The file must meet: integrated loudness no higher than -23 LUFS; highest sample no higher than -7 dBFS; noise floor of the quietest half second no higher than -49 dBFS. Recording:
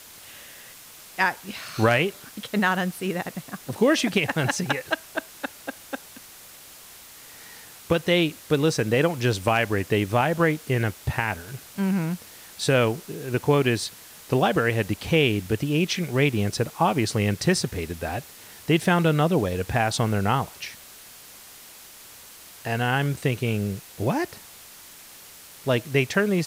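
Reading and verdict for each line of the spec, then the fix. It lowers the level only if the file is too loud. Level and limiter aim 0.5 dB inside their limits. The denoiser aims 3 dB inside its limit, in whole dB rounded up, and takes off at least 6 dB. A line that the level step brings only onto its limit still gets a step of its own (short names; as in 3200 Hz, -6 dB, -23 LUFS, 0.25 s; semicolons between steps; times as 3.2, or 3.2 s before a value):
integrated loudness -24.5 LUFS: OK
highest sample -9.0 dBFS: OK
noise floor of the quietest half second -46 dBFS: fail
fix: denoiser 6 dB, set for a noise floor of -46 dBFS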